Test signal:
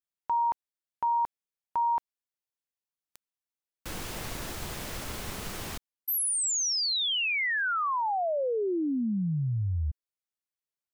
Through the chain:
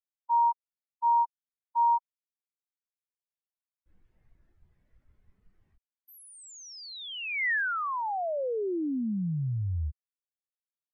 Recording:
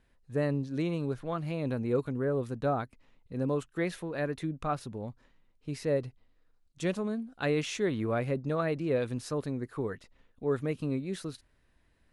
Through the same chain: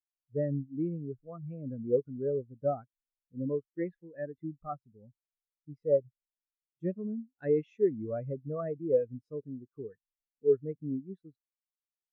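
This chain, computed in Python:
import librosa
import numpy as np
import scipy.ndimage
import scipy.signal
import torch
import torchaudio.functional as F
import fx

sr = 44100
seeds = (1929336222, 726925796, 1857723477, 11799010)

y = fx.dynamic_eq(x, sr, hz=1900.0, q=1.9, threshold_db=-49.0, ratio=4.0, max_db=4)
y = fx.spectral_expand(y, sr, expansion=2.5)
y = y * librosa.db_to_amplitude(2.0)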